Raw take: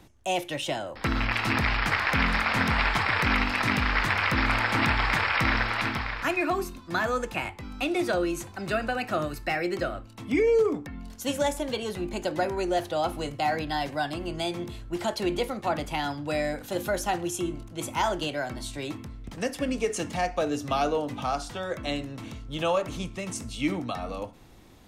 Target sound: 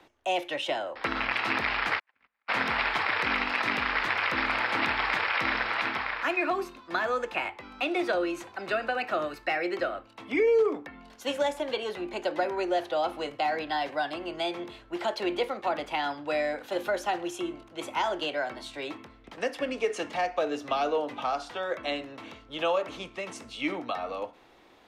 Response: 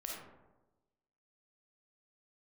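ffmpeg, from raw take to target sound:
-filter_complex "[0:a]acrossover=split=330 4200:gain=0.1 1 0.178[s0][s1][s2];[s0][s1][s2]amix=inputs=3:normalize=0,asplit=3[s3][s4][s5];[s3]afade=t=out:st=1.98:d=0.02[s6];[s4]agate=range=0.00112:threshold=0.112:ratio=16:detection=peak,afade=t=in:st=1.98:d=0.02,afade=t=out:st=2.48:d=0.02[s7];[s5]afade=t=in:st=2.48:d=0.02[s8];[s6][s7][s8]amix=inputs=3:normalize=0,acrossover=split=470|3000[s9][s10][s11];[s10]acompressor=threshold=0.0398:ratio=6[s12];[s9][s12][s11]amix=inputs=3:normalize=0,volume=1.26"

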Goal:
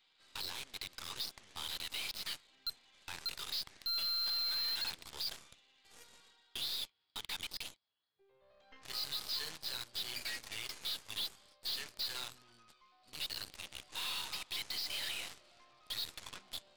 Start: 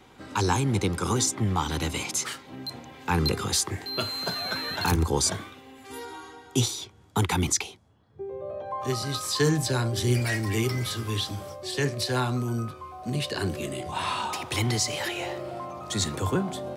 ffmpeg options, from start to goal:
-af "bandpass=f=4000:t=q:w=1.3:csg=0,alimiter=level_in=1.26:limit=0.0631:level=0:latency=1:release=60,volume=0.794,aresample=11025,asoftclip=type=hard:threshold=0.0158,aresample=44100,highshelf=f=3700:g=9.5,aeval=exprs='0.0562*(cos(1*acos(clip(val(0)/0.0562,-1,1)))-cos(1*PI/2))+0.00501*(cos(6*acos(clip(val(0)/0.0562,-1,1)))-cos(6*PI/2))+0.01*(cos(7*acos(clip(val(0)/0.0562,-1,1)))-cos(7*PI/2))':c=same,asoftclip=type=tanh:threshold=0.0251"

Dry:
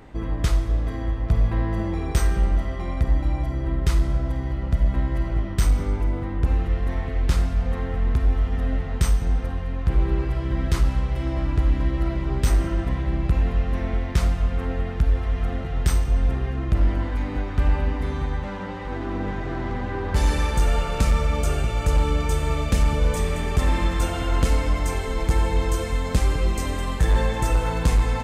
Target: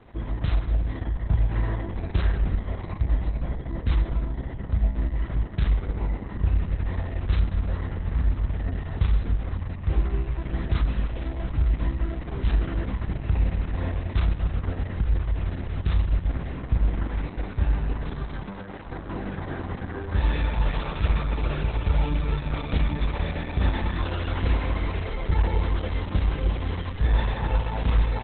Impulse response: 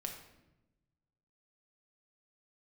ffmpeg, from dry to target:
-filter_complex "[0:a]equalizer=f=89:w=3.7:g=4.5,asettb=1/sr,asplit=3[s0][s1][s2];[s0]atrim=end=22.504[s3];[s1]atrim=start=22.5:end=24.88,asetpts=PTS-STARTPTS,afade=t=in:d=0.004:c=qsin,afade=t=out:st=2.376:d=0.004:c=qsin,asplit=2[s4][s5];[s5]adelay=31,volume=0.316[s6];[s4][s6]amix=inputs=2:normalize=0,atrim=end_sample=104958[s7];[s2]atrim=start=24.876[s8];[s3][s7]acrossfade=d=0.004:c1=hsin:c2=qsin[s9];[s9][s8]acrossfade=d=0.004:c1=qsin:c2=hsin,aecho=1:1:21|35:0.237|0.631,volume=0.562" -ar 48000 -c:a libopus -b:a 6k

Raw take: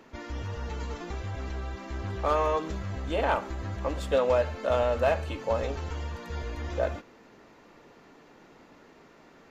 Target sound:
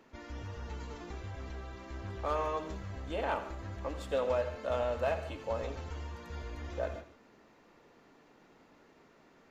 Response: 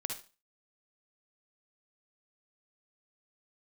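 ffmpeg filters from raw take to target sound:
-filter_complex "[0:a]asplit=2[s0][s1];[1:a]atrim=start_sample=2205,adelay=85[s2];[s1][s2]afir=irnorm=-1:irlink=0,volume=0.266[s3];[s0][s3]amix=inputs=2:normalize=0,volume=0.422"

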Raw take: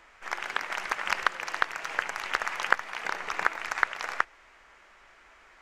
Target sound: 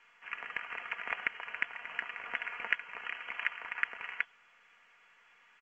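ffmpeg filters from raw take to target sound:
-af "highpass=49,bandreject=f=60:t=h:w=6,bandreject=f=120:t=h:w=6,bandreject=f=180:t=h:w=6,bandreject=f=240:t=h:w=6,bandreject=f=300:t=h:w=6,aecho=1:1:4.1:0.49,lowpass=f=2900:t=q:w=0.5098,lowpass=f=2900:t=q:w=0.6013,lowpass=f=2900:t=q:w=0.9,lowpass=f=2900:t=q:w=2.563,afreqshift=-3400,volume=0.376" -ar 16000 -c:a pcm_mulaw

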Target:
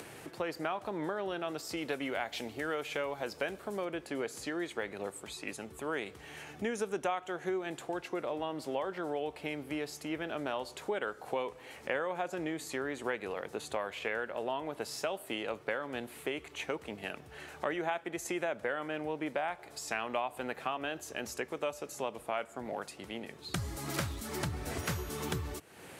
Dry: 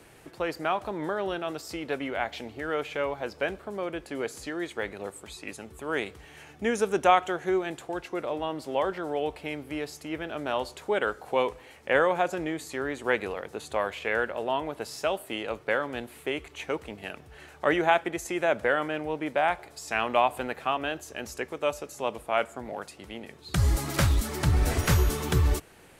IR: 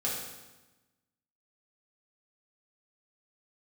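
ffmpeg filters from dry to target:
-filter_complex "[0:a]acompressor=threshold=0.0282:ratio=4,asettb=1/sr,asplit=3[s0][s1][s2];[s0]atrim=end=1.774[s3];[s1]atrim=start=1.77:end=3.85,asetpts=PTS-STARTPTS,afade=t=in:d=0.004:c=qsin,afade=t=out:st=2.076:d=0.004:c=qsin,highshelf=f=5100:g=9.5[s4];[s2]atrim=start=3.846[s5];[s3][s4]acrossfade=d=0.004:c1=hsin:c2=qsin[s6];[s6][s5]acrossfade=d=0.004:c1=qsin:c2=hsin,acompressor=mode=upward:threshold=0.01:ratio=2.5,highpass=100,volume=0.891"

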